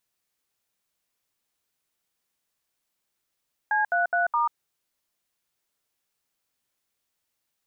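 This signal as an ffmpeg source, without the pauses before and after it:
-f lavfi -i "aevalsrc='0.0708*clip(min(mod(t,0.209),0.139-mod(t,0.209))/0.002,0,1)*(eq(floor(t/0.209),0)*(sin(2*PI*852*mod(t,0.209))+sin(2*PI*1633*mod(t,0.209)))+eq(floor(t/0.209),1)*(sin(2*PI*697*mod(t,0.209))+sin(2*PI*1477*mod(t,0.209)))+eq(floor(t/0.209),2)*(sin(2*PI*697*mod(t,0.209))+sin(2*PI*1477*mod(t,0.209)))+eq(floor(t/0.209),3)*(sin(2*PI*941*mod(t,0.209))+sin(2*PI*1209*mod(t,0.209))))':d=0.836:s=44100"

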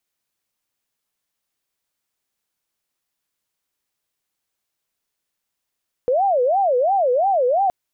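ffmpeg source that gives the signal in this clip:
-f lavfi -i "aevalsrc='0.188*sin(2*PI*(643.5*t-155.5/(2*PI*2.9)*sin(2*PI*2.9*t)))':d=1.62:s=44100"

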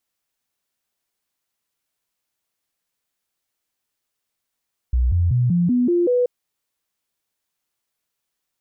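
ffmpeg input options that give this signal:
-f lavfi -i "aevalsrc='0.188*clip(min(mod(t,0.19),0.19-mod(t,0.19))/0.005,0,1)*sin(2*PI*61.6*pow(2,floor(t/0.19)/2)*mod(t,0.19))':d=1.33:s=44100"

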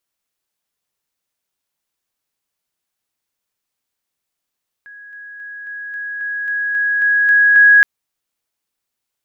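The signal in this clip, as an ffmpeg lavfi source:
-f lavfi -i "aevalsrc='pow(10,(-35+3*floor(t/0.27))/20)*sin(2*PI*1660*t)':d=2.97:s=44100"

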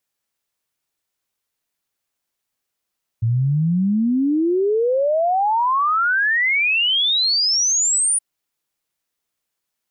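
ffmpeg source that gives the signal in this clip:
-f lavfi -i "aevalsrc='0.178*clip(min(t,4.97-t)/0.01,0,1)*sin(2*PI*110*4.97/log(9700/110)*(exp(log(9700/110)*t/4.97)-1))':d=4.97:s=44100"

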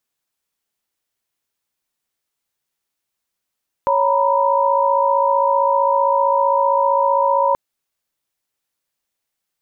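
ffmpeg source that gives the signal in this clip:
-f lavfi -i "aevalsrc='0.133*(sin(2*PI*554.37*t)+sin(2*PI*932.33*t)+sin(2*PI*987.77*t))':d=3.68:s=44100"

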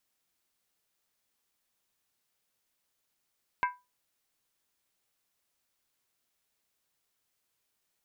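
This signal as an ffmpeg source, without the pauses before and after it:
-f lavfi -i "aevalsrc='0.0794*pow(10,-3*t/0.24)*sin(2*PI*990*t)+0.0447*pow(10,-3*t/0.19)*sin(2*PI*1578.1*t)+0.0251*pow(10,-3*t/0.164)*sin(2*PI*2114.6*t)+0.0141*pow(10,-3*t/0.158)*sin(2*PI*2273*t)+0.00794*pow(10,-3*t/0.147)*sin(2*PI*2626.5*t)':d=0.63:s=44100"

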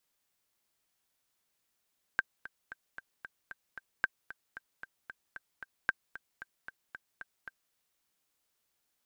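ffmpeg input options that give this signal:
-f lavfi -i "aevalsrc='pow(10,(-13.5-16.5*gte(mod(t,7*60/227),60/227))/20)*sin(2*PI*1570*mod(t,60/227))*exp(-6.91*mod(t,60/227)/0.03)':d=5.55:s=44100"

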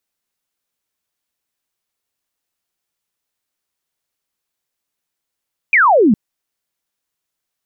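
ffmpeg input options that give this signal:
-f lavfi -i "aevalsrc='0.422*clip(t/0.002,0,1)*clip((0.41-t)/0.002,0,1)*sin(2*PI*2500*0.41/log(190/2500)*(exp(log(190/2500)*t/0.41)-1))':d=0.41:s=44100"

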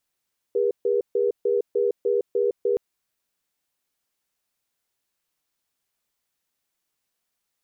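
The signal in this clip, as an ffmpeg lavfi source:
-f lavfi -i "aevalsrc='0.0841*(sin(2*PI*405*t)+sin(2*PI*481*t))*clip(min(mod(t,0.3),0.16-mod(t,0.3))/0.005,0,1)':d=2.22:s=44100"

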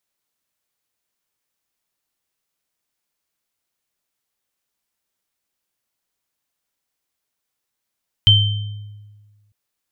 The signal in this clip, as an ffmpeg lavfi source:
-f lavfi -i "aevalsrc='0.316*pow(10,-3*t/1.55)*sin(2*PI*104*t)+0.447*pow(10,-3*t/0.73)*sin(2*PI*3110*t)':d=1.25:s=44100"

